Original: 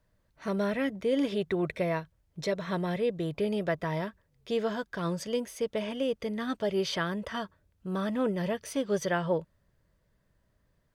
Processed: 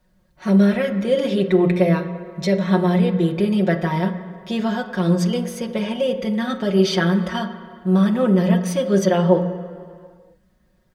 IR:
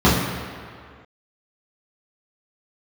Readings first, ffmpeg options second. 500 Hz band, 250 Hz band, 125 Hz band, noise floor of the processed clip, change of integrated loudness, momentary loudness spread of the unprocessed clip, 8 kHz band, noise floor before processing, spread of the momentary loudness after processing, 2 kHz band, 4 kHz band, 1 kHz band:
+10.0 dB, +14.5 dB, +16.0 dB, -61 dBFS, +12.0 dB, 6 LU, +8.5 dB, -72 dBFS, 10 LU, +8.0 dB, +9.0 dB, +9.5 dB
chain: -filter_complex "[0:a]aecho=1:1:5.5:0.87,asplit=2[s0][s1];[1:a]atrim=start_sample=2205,lowshelf=f=210:g=-9[s2];[s1][s2]afir=irnorm=-1:irlink=0,volume=0.0335[s3];[s0][s3]amix=inputs=2:normalize=0,volume=1.88"

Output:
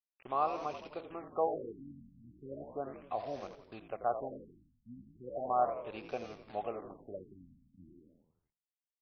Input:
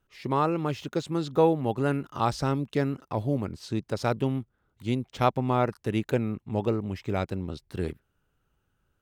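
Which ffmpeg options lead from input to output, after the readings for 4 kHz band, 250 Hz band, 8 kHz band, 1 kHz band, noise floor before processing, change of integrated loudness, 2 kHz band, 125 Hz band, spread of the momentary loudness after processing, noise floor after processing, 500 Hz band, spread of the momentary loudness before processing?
-17.5 dB, -19.5 dB, under -20 dB, -6.0 dB, -75 dBFS, -10.0 dB, -15.5 dB, -26.0 dB, 19 LU, under -85 dBFS, -10.0 dB, 10 LU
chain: -filter_complex "[0:a]asplit=3[s0][s1][s2];[s0]bandpass=f=730:t=q:w=8,volume=1[s3];[s1]bandpass=f=1090:t=q:w=8,volume=0.501[s4];[s2]bandpass=f=2440:t=q:w=8,volume=0.355[s5];[s3][s4][s5]amix=inputs=3:normalize=0,acrusher=bits=8:mix=0:aa=0.000001,bandreject=f=165.1:t=h:w=4,bandreject=f=330.2:t=h:w=4,bandreject=f=495.3:t=h:w=4,bandreject=f=660.4:t=h:w=4,bandreject=f=825.5:t=h:w=4,bandreject=f=990.6:t=h:w=4,bandreject=f=1155.7:t=h:w=4,bandreject=f=1320.8:t=h:w=4,asplit=2[s6][s7];[s7]asplit=7[s8][s9][s10][s11][s12][s13][s14];[s8]adelay=85,afreqshift=-49,volume=0.316[s15];[s9]adelay=170,afreqshift=-98,volume=0.18[s16];[s10]adelay=255,afreqshift=-147,volume=0.102[s17];[s11]adelay=340,afreqshift=-196,volume=0.0589[s18];[s12]adelay=425,afreqshift=-245,volume=0.0335[s19];[s13]adelay=510,afreqshift=-294,volume=0.0191[s20];[s14]adelay=595,afreqshift=-343,volume=0.0108[s21];[s15][s16][s17][s18][s19][s20][s21]amix=inputs=7:normalize=0[s22];[s6][s22]amix=inputs=2:normalize=0,afftfilt=real='re*lt(b*sr/1024,270*pow(6500/270,0.5+0.5*sin(2*PI*0.36*pts/sr)))':imag='im*lt(b*sr/1024,270*pow(6500/270,0.5+0.5*sin(2*PI*0.36*pts/sr)))':win_size=1024:overlap=0.75,volume=1.33"

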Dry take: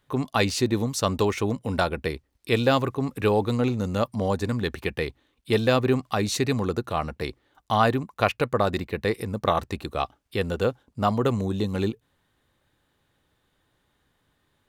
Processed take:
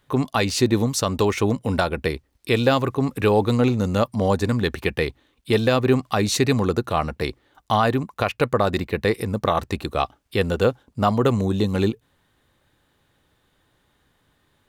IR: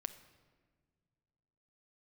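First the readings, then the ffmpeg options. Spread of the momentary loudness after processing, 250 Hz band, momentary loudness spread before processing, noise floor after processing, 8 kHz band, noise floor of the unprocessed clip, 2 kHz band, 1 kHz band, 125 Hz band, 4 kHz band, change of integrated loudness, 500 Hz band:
7 LU, +4.0 dB, 8 LU, -66 dBFS, +4.5 dB, -71 dBFS, +3.0 dB, +2.5 dB, +4.0 dB, +3.5 dB, +3.5 dB, +3.5 dB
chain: -af "alimiter=limit=0.251:level=0:latency=1:release=212,volume=1.78"

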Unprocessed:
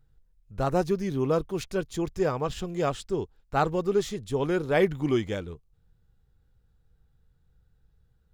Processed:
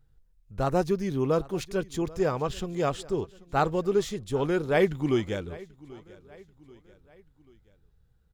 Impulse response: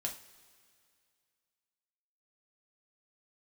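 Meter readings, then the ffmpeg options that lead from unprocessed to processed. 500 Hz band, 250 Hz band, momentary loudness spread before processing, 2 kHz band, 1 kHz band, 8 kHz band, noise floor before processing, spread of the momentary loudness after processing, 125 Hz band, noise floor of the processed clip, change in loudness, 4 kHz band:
0.0 dB, 0.0 dB, 8 LU, 0.0 dB, 0.0 dB, 0.0 dB, -67 dBFS, 12 LU, 0.0 dB, -65 dBFS, 0.0 dB, 0.0 dB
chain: -af "aecho=1:1:786|1572|2358:0.0891|0.0419|0.0197"

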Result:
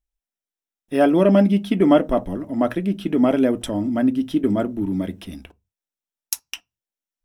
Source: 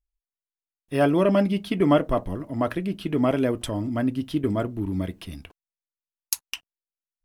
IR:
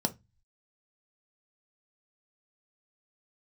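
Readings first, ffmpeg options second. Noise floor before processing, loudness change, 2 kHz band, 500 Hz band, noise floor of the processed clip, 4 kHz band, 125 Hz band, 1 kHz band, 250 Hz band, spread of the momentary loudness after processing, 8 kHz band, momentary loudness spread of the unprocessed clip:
under -85 dBFS, +4.5 dB, +1.5 dB, +4.0 dB, under -85 dBFS, +1.0 dB, +1.0 dB, +2.5 dB, +6.0 dB, 13 LU, +1.5 dB, 13 LU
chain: -filter_complex "[0:a]asplit=2[s0][s1];[1:a]atrim=start_sample=2205,afade=t=out:st=0.28:d=0.01,atrim=end_sample=12789[s2];[s1][s2]afir=irnorm=-1:irlink=0,volume=0.211[s3];[s0][s3]amix=inputs=2:normalize=0"

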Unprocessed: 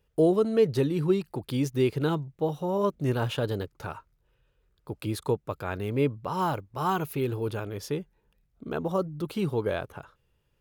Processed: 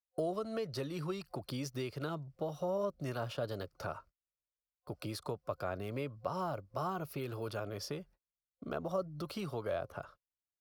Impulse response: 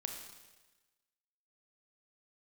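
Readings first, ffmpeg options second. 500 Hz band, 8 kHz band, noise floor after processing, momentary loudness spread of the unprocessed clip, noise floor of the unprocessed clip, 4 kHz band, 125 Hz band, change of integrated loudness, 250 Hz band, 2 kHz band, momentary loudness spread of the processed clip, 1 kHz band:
-10.5 dB, -6.5 dB, under -85 dBFS, 12 LU, -72 dBFS, -7.0 dB, -11.5 dB, -11.0 dB, -13.0 dB, -9.0 dB, 8 LU, -9.0 dB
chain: -filter_complex "[0:a]acrossover=split=100|780[s0][s1][s2];[s0]acompressor=threshold=0.00355:ratio=4[s3];[s1]acompressor=threshold=0.0158:ratio=4[s4];[s2]acompressor=threshold=0.00794:ratio=4[s5];[s3][s4][s5]amix=inputs=3:normalize=0,agate=range=0.0158:threshold=0.00178:ratio=16:detection=peak,superequalizer=8b=2.51:10b=1.78:14b=2.24,volume=0.631"

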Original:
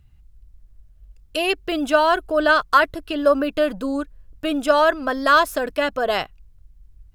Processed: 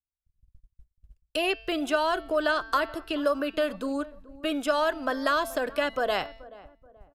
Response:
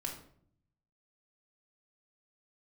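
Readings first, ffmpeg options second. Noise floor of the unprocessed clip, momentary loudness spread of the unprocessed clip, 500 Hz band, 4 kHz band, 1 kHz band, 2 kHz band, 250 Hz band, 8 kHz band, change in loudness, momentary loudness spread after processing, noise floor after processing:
-52 dBFS, 10 LU, -7.5 dB, -6.0 dB, -9.0 dB, -8.5 dB, -6.5 dB, -5.5 dB, -8.0 dB, 8 LU, under -85 dBFS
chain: -filter_complex "[0:a]bandreject=f=223.8:t=h:w=4,bandreject=f=447.6:t=h:w=4,bandreject=f=671.4:t=h:w=4,bandreject=f=895.2:t=h:w=4,bandreject=f=1119:t=h:w=4,bandreject=f=1342.8:t=h:w=4,bandreject=f=1566.6:t=h:w=4,bandreject=f=1790.4:t=h:w=4,bandreject=f=2014.2:t=h:w=4,bandreject=f=2238:t=h:w=4,bandreject=f=2461.8:t=h:w=4,bandreject=f=2685.6:t=h:w=4,bandreject=f=2909.4:t=h:w=4,bandreject=f=3133.2:t=h:w=4,bandreject=f=3357:t=h:w=4,bandreject=f=3580.8:t=h:w=4,bandreject=f=3804.6:t=h:w=4,bandreject=f=4028.4:t=h:w=4,bandreject=f=4252.2:t=h:w=4,bandreject=f=4476:t=h:w=4,bandreject=f=4699.8:t=h:w=4,bandreject=f=4923.6:t=h:w=4,bandreject=f=5147.4:t=h:w=4,bandreject=f=5371.2:t=h:w=4,bandreject=f=5595:t=h:w=4,bandreject=f=5818.8:t=h:w=4,agate=range=0.00501:threshold=0.00794:ratio=16:detection=peak,acrossover=split=240|740|3000[s0][s1][s2][s3];[s0]acompressor=threshold=0.00794:ratio=4[s4];[s1]acompressor=threshold=0.0562:ratio=4[s5];[s2]acompressor=threshold=0.0631:ratio=4[s6];[s3]acompressor=threshold=0.02:ratio=4[s7];[s4][s5][s6][s7]amix=inputs=4:normalize=0,asplit=2[s8][s9];[s9]adelay=430,lowpass=f=990:p=1,volume=0.126,asplit=2[s10][s11];[s11]adelay=430,lowpass=f=990:p=1,volume=0.41,asplit=2[s12][s13];[s13]adelay=430,lowpass=f=990:p=1,volume=0.41[s14];[s8][s10][s12][s14]amix=inputs=4:normalize=0,aresample=32000,aresample=44100,volume=0.708"

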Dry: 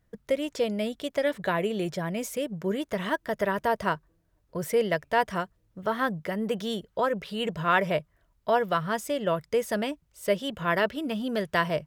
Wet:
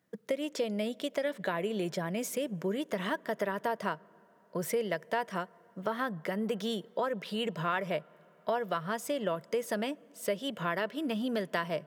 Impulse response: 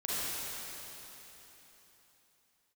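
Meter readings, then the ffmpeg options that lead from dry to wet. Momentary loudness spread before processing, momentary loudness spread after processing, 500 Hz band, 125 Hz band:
6 LU, 5 LU, -5.5 dB, -5.5 dB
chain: -filter_complex "[0:a]highpass=f=160:w=0.5412,highpass=f=160:w=1.3066,acompressor=threshold=0.0316:ratio=3,asplit=2[s0][s1];[1:a]atrim=start_sample=2205,highshelf=f=2300:g=-11.5[s2];[s1][s2]afir=irnorm=-1:irlink=0,volume=0.0335[s3];[s0][s3]amix=inputs=2:normalize=0"

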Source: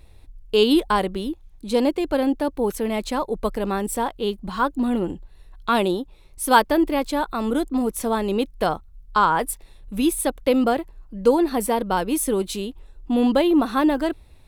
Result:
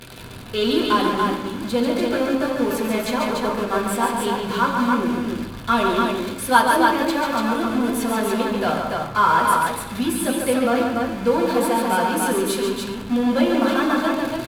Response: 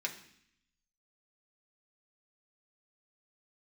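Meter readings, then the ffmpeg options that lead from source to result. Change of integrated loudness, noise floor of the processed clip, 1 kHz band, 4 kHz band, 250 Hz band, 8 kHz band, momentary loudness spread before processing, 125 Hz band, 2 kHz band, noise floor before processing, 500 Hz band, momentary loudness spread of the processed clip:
+1.5 dB, -33 dBFS, +3.5 dB, +2.5 dB, +1.0 dB, +1.5 dB, 12 LU, +3.5 dB, +6.0 dB, -49 dBFS, +0.5 dB, 7 LU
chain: -filter_complex "[0:a]aeval=exprs='val(0)+0.5*0.0668*sgn(val(0))':c=same,aecho=1:1:139.9|288.6:0.562|0.708[s0];[1:a]atrim=start_sample=2205,asetrate=28224,aresample=44100[s1];[s0][s1]afir=irnorm=-1:irlink=0,volume=0.473"

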